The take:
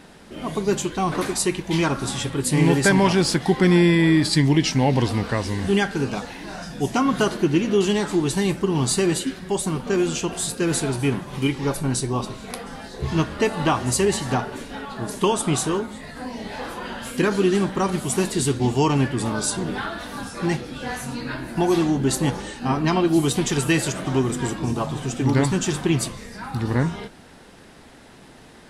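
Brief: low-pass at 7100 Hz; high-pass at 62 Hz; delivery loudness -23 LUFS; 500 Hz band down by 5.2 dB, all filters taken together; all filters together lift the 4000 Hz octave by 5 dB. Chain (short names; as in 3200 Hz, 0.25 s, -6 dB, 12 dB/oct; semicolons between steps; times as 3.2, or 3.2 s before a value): HPF 62 Hz; LPF 7100 Hz; bell 500 Hz -8 dB; bell 4000 Hz +7 dB; gain +0.5 dB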